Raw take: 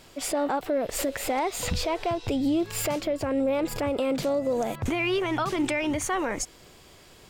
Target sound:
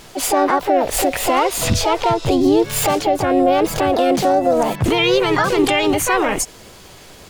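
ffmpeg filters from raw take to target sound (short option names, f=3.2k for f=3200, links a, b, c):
-filter_complex "[0:a]acontrast=32,asplit=2[a][b];[b]asetrate=58866,aresample=44100,atempo=0.749154,volume=-1dB[c];[a][c]amix=inputs=2:normalize=0,volume=3dB"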